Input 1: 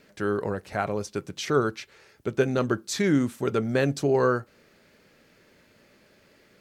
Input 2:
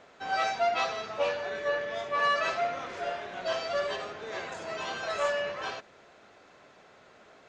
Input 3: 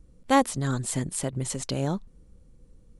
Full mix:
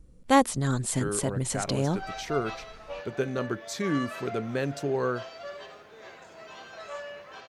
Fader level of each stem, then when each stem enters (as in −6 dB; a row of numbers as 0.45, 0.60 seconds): −6.0, −10.0, +0.5 decibels; 0.80, 1.70, 0.00 seconds